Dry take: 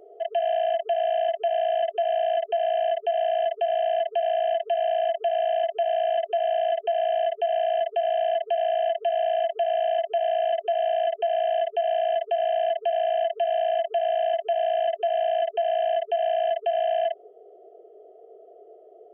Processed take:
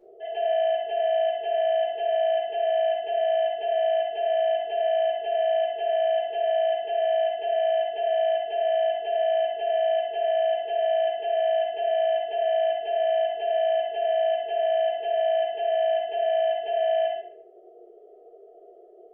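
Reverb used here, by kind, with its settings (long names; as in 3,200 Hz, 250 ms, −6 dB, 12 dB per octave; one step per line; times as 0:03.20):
rectangular room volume 96 cubic metres, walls mixed, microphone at 2.3 metres
level −11.5 dB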